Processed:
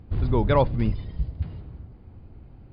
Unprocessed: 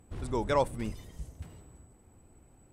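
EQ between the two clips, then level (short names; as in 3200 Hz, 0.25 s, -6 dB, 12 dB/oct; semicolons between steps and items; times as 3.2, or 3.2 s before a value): brick-wall FIR low-pass 5000 Hz; bell 120 Hz +3 dB 1.4 oct; low shelf 200 Hz +10 dB; +4.5 dB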